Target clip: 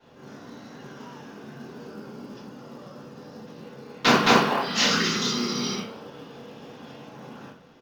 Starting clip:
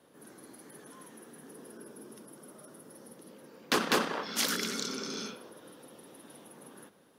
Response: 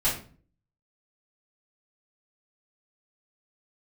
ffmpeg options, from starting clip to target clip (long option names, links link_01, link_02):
-filter_complex "[1:a]atrim=start_sample=2205,atrim=end_sample=4410[link_01];[0:a][link_01]afir=irnorm=-1:irlink=0,aresample=16000,aresample=44100,acrusher=bits=7:mode=log:mix=0:aa=0.000001,asetrate=40517,aresample=44100"